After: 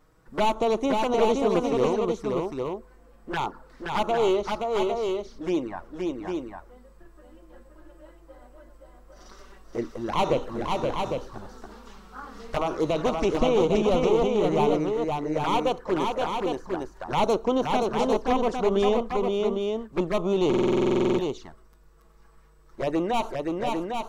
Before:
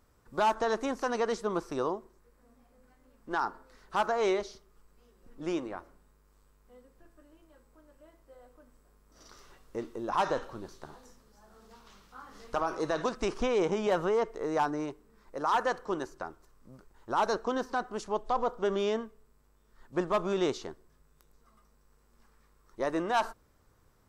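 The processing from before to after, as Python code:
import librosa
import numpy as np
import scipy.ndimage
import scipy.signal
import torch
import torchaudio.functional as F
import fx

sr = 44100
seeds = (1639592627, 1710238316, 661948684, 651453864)

p1 = np.minimum(x, 2.0 * 10.0 ** (-25.0 / 20.0) - x)
p2 = fx.high_shelf(p1, sr, hz=4100.0, db=-7.0)
p3 = fx.rider(p2, sr, range_db=4, speed_s=2.0)
p4 = p2 + (p3 * librosa.db_to_amplitude(1.5))
p5 = fx.env_flanger(p4, sr, rest_ms=6.7, full_db=-22.0)
p6 = p5 + fx.echo_multitap(p5, sr, ms=(523, 803), db=(-3.5, -5.0), dry=0)
p7 = fx.buffer_glitch(p6, sr, at_s=(20.49,), block=2048, repeats=14)
y = p7 * librosa.db_to_amplitude(1.5)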